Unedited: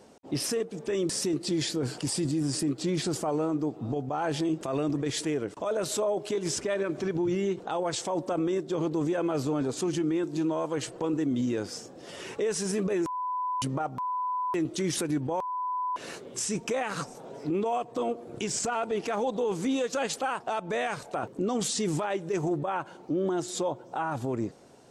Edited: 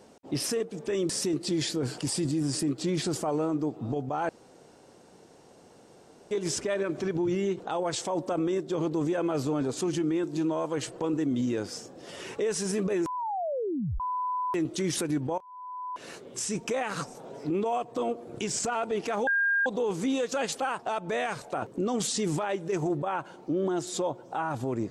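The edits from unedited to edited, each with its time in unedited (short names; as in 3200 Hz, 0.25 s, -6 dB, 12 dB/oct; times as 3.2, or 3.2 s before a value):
4.29–6.31 room tone
13.17 tape stop 0.83 s
15.38–16.97 fade in equal-power, from -21.5 dB
19.27 add tone 1610 Hz -22 dBFS 0.39 s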